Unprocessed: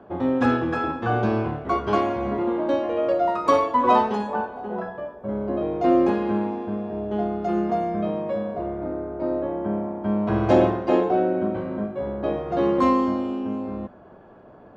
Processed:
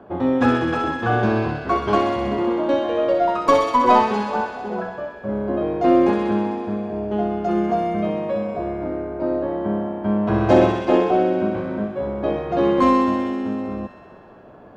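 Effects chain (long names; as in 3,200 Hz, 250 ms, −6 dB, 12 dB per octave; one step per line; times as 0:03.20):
stylus tracing distortion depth 0.035 ms
delay with a high-pass on its return 64 ms, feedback 82%, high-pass 2,000 Hz, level −5 dB
level +3 dB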